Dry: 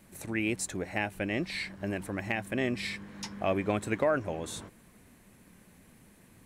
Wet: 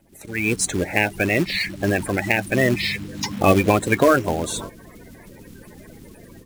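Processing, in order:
spectral magnitudes quantised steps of 30 dB
floating-point word with a short mantissa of 2 bits
automatic gain control gain up to 15.5 dB

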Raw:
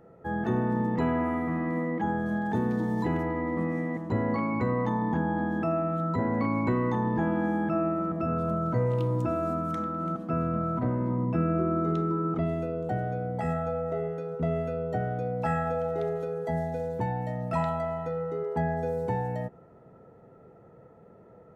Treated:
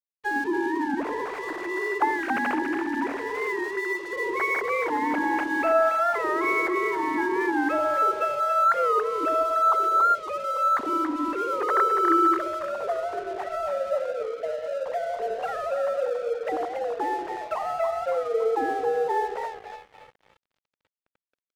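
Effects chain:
three sine waves on the formant tracks
echo with a time of its own for lows and highs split 590 Hz, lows 88 ms, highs 281 ms, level −6.5 dB
dead-zone distortion −45.5 dBFS
wow of a warped record 45 rpm, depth 100 cents
level +3 dB

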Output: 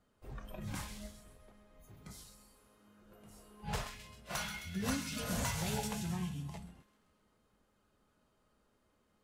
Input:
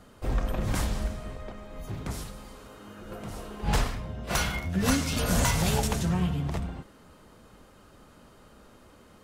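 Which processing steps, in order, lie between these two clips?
tuned comb filter 210 Hz, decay 1 s, mix 70%
delay with a high-pass on its return 131 ms, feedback 63%, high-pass 1,500 Hz, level −9 dB
noise reduction from a noise print of the clip's start 10 dB
level −1 dB

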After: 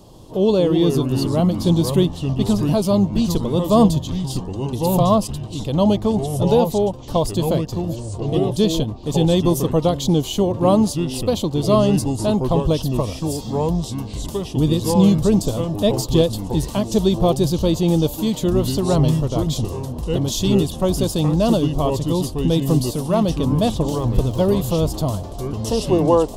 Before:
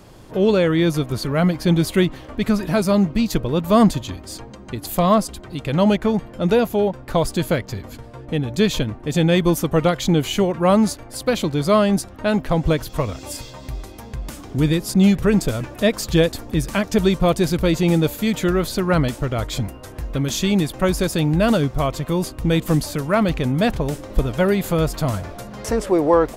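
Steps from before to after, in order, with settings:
0:23.89–0:24.56: surface crackle 42 per second −28 dBFS
delay with pitch and tempo change per echo 139 ms, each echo −4 semitones, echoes 3, each echo −6 dB
flat-topped bell 1,800 Hz −15.5 dB 1.1 octaves

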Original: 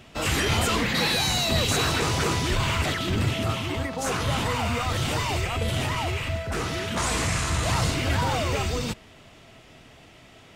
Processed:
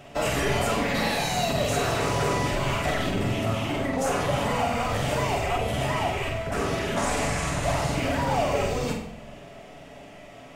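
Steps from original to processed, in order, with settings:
downward compressor 3 to 1, threshold −27 dBFS, peak gain reduction 7 dB
graphic EQ with 15 bands 100 Hz −6 dB, 630 Hz +9 dB, 4,000 Hz −5 dB
flutter between parallel walls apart 8 metres, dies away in 0.47 s
on a send at −3 dB: convolution reverb RT60 0.70 s, pre-delay 7 ms

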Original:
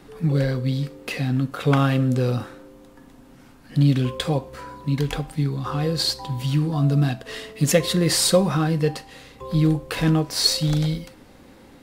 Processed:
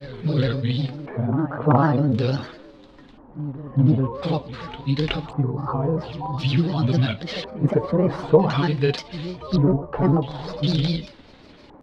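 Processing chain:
auto-filter low-pass square 0.47 Hz 910–3,800 Hz
backwards echo 396 ms −14 dB
granular cloud, spray 27 ms, pitch spread up and down by 3 semitones
level +1 dB

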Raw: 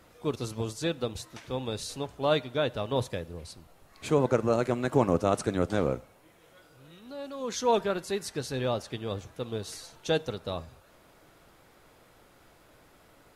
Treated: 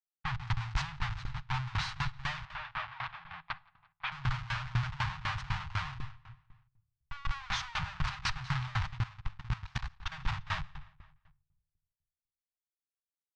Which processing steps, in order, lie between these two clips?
comb filter 6.6 ms, depth 95%
comparator with hysteresis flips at −35.5 dBFS
0:02.45–0:04.12: three-way crossover with the lows and the highs turned down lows −22 dB, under 240 Hz, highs −24 dB, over 4,500 Hz
inverse Chebyshev band-stop filter 230–520 Hz, stop band 50 dB
repeating echo 173 ms, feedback 47%, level −15 dB
low-pass that shuts in the quiet parts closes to 2,600 Hz, open at −20 dBFS
high-frequency loss of the air 130 metres
convolution reverb RT60 0.90 s, pre-delay 6 ms, DRR 13.5 dB
0:08.97–0:10.12: output level in coarse steps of 16 dB
tremolo with a ramp in dB decaying 4 Hz, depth 21 dB
level +5.5 dB

